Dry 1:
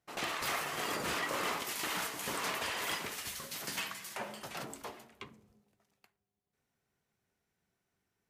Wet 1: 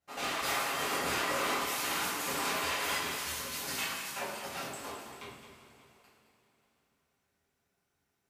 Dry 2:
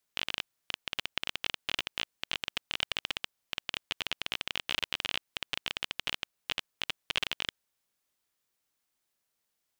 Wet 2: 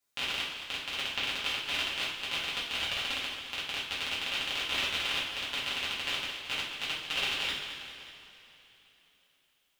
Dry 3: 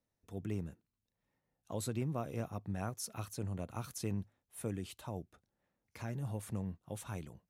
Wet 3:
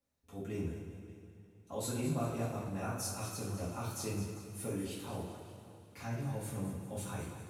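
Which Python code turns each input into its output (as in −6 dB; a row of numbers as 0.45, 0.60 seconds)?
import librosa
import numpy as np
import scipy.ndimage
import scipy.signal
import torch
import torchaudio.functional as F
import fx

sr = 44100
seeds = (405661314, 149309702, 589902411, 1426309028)

y = fx.echo_multitap(x, sr, ms=(216, 392, 581), db=(-10.5, -17.0, -19.5))
y = fx.rev_double_slope(y, sr, seeds[0], early_s=0.58, late_s=3.7, knee_db=-17, drr_db=-8.5)
y = y * librosa.db_to_amplitude(-6.0)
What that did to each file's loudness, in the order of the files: +3.5, +3.0, +2.0 LU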